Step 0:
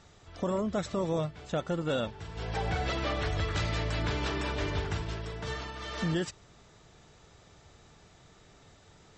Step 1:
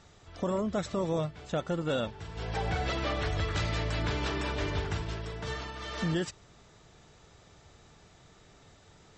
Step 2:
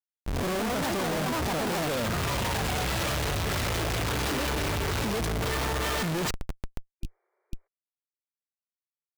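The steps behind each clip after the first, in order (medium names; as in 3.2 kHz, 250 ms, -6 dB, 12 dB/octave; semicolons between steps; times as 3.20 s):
no audible change
ever faster or slower copies 259 ms, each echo +4 st, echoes 3; Schmitt trigger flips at -44.5 dBFS; spectral replace 7.04–7.64 s, 360–2400 Hz before; trim +3.5 dB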